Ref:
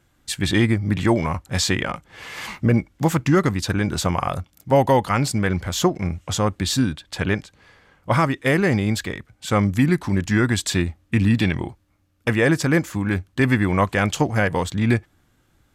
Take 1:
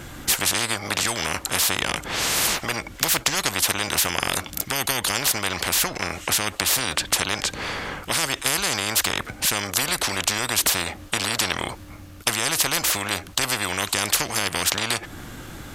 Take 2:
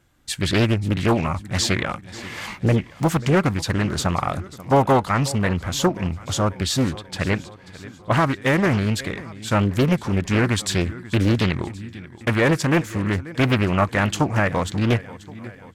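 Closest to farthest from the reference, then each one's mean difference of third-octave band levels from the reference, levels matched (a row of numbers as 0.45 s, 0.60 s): 2, 1; 4.0 dB, 14.5 dB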